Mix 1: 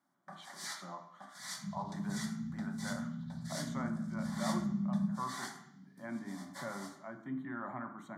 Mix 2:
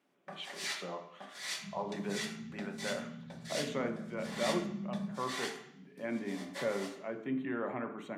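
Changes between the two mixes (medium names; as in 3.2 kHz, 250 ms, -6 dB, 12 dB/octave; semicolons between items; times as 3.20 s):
second sound -8.0 dB; master: remove static phaser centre 1.1 kHz, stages 4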